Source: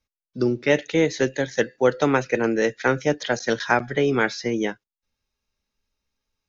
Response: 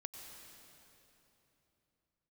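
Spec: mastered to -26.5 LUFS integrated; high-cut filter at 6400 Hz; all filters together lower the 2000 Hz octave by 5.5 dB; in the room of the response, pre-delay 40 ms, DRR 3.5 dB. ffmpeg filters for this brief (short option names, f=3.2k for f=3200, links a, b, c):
-filter_complex "[0:a]lowpass=6.4k,equalizer=f=2k:t=o:g=-7.5,asplit=2[a][b];[1:a]atrim=start_sample=2205,adelay=40[c];[b][c]afir=irnorm=-1:irlink=0,volume=0dB[d];[a][d]amix=inputs=2:normalize=0,volume=-4.5dB"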